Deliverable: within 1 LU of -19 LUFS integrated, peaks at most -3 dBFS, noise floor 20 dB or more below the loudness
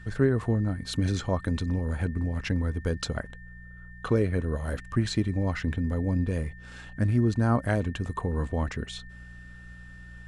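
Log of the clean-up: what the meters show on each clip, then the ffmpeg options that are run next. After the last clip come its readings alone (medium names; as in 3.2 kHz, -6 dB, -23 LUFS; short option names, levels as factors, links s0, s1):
hum 60 Hz; highest harmonic 180 Hz; hum level -44 dBFS; steady tone 1.8 kHz; tone level -49 dBFS; loudness -28.5 LUFS; peak level -10.5 dBFS; loudness target -19.0 LUFS
-> -af "bandreject=f=60:t=h:w=4,bandreject=f=120:t=h:w=4,bandreject=f=180:t=h:w=4"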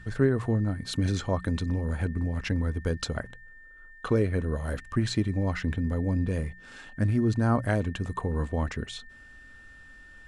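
hum not found; steady tone 1.8 kHz; tone level -49 dBFS
-> -af "bandreject=f=1800:w=30"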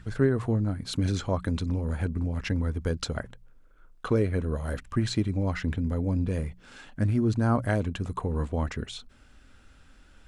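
steady tone not found; loudness -29.0 LUFS; peak level -10.5 dBFS; loudness target -19.0 LUFS
-> -af "volume=3.16,alimiter=limit=0.708:level=0:latency=1"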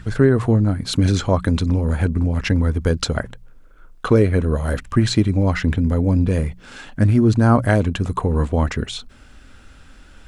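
loudness -19.0 LUFS; peak level -3.0 dBFS; noise floor -46 dBFS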